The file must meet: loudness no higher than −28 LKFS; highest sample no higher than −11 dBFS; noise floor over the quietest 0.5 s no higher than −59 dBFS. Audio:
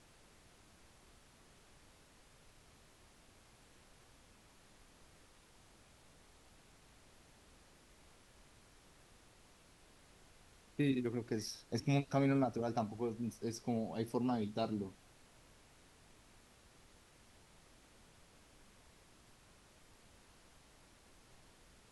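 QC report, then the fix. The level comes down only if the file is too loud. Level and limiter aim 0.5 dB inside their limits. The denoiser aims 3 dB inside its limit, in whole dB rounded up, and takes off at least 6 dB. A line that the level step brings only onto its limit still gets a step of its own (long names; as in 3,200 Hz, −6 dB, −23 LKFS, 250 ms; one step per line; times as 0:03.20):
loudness −38.0 LKFS: in spec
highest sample −21.0 dBFS: in spec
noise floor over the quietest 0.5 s −64 dBFS: in spec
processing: no processing needed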